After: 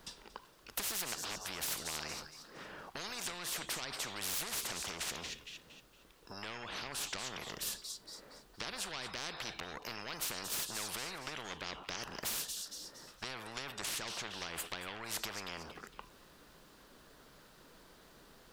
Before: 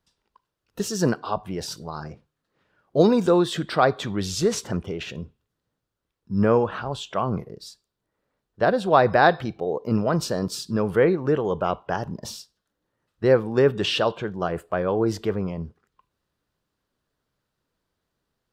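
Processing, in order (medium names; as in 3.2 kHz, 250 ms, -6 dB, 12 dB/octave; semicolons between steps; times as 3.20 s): peaking EQ 94 Hz -13 dB 0.97 oct; compression 6:1, threshold -32 dBFS, peak gain reduction 19.5 dB; saturation -26.5 dBFS, distortion -17 dB; feedback echo behind a high-pass 231 ms, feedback 34%, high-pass 2.8 kHz, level -18 dB; spectrum-flattening compressor 10:1; trim +5.5 dB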